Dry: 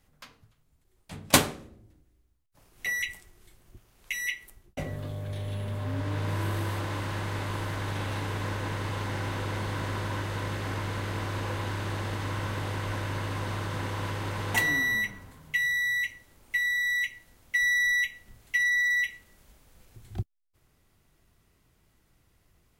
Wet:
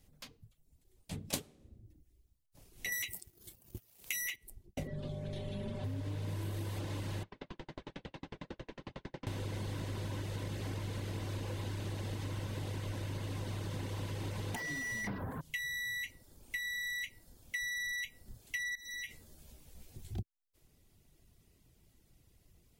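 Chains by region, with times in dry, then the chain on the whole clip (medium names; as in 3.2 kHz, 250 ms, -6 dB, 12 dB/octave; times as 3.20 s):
2.92–4.36 s: high-pass 67 Hz + peaking EQ 15 kHz +11.5 dB + waveshaping leveller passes 2
4.87–5.84 s: distance through air 74 m + comb 5.2 ms, depth 66%
7.23–9.27 s: distance through air 180 m + hum notches 50/100/150/200/250/300/350/400/450/500 Hz + sawtooth tremolo in dB decaying 11 Hz, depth 38 dB
14.55–15.41 s: FFT filter 170 Hz 0 dB, 320 Hz -6 dB, 1.7 kHz -2 dB, 2.8 kHz -28 dB, 6.7 kHz -23 dB, 15 kHz -3 dB + overdrive pedal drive 36 dB, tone 1.3 kHz, clips at -19 dBFS
18.75–20.14 s: doubling 13 ms -2 dB + compression 12:1, threshold -32 dBFS
whole clip: reverb removal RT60 0.58 s; peaking EQ 1.3 kHz -11.5 dB 1.6 oct; compression, threshold -38 dBFS; trim +2 dB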